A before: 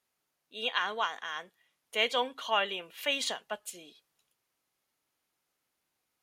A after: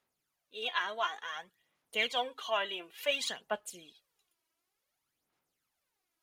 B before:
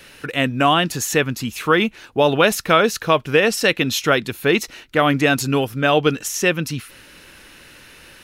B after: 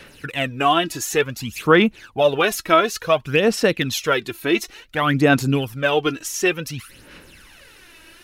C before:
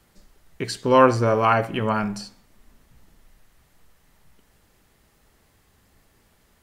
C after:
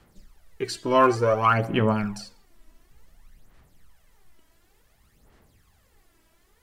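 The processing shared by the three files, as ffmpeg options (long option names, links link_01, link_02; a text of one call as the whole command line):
ffmpeg -i in.wav -af "aphaser=in_gain=1:out_gain=1:delay=3.1:decay=0.61:speed=0.56:type=sinusoidal,volume=-4.5dB" out.wav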